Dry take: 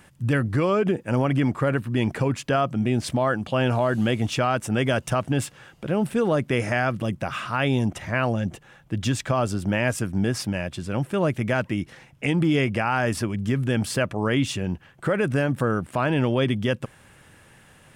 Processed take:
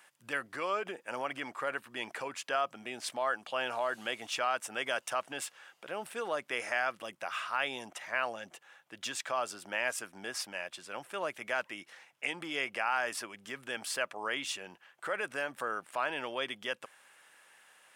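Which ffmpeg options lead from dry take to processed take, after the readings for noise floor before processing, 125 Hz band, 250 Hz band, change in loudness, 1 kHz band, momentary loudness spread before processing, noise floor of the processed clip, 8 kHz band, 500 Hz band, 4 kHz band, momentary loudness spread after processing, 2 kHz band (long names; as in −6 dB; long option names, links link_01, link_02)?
−53 dBFS, −35.5 dB, −24.5 dB, −11.5 dB, −7.0 dB, 7 LU, −67 dBFS, −5.5 dB, −13.0 dB, −5.5 dB, 9 LU, −5.5 dB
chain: -af "highpass=770,volume=-5.5dB"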